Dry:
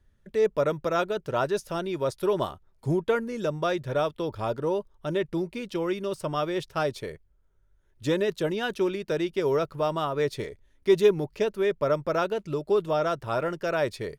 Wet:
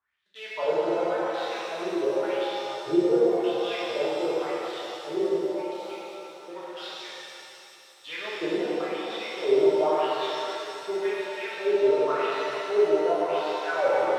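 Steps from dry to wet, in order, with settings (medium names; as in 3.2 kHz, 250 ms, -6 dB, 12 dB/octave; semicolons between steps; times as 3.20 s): CVSD coder 64 kbps; in parallel at -10 dB: bit crusher 4-bit; 5.36–6.48 s: on the sum: differentiator; wah-wah 0.91 Hz 320–3900 Hz, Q 6.5; pitch-shifted reverb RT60 3 s, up +7 st, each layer -8 dB, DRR -8.5 dB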